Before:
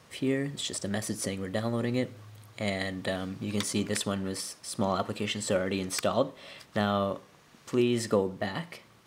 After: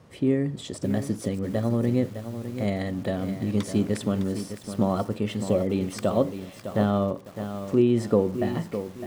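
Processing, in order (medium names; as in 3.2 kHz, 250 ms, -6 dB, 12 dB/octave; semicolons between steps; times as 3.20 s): tilt shelf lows +7.5 dB, about 910 Hz; spectral replace 5.47–5.77 s, 830–1900 Hz; bit-crushed delay 608 ms, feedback 35%, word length 7-bit, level -9.5 dB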